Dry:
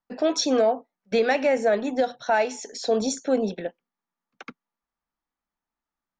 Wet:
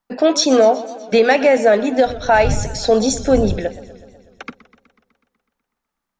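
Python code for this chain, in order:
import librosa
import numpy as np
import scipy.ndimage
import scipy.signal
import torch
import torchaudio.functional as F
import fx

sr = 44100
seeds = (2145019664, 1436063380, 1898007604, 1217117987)

y = fx.dmg_wind(x, sr, seeds[0], corner_hz=88.0, level_db=-31.0, at=(2.05, 3.58), fade=0.02)
y = fx.echo_warbled(y, sr, ms=124, feedback_pct=66, rate_hz=2.8, cents=127, wet_db=-17.5)
y = y * librosa.db_to_amplitude(8.5)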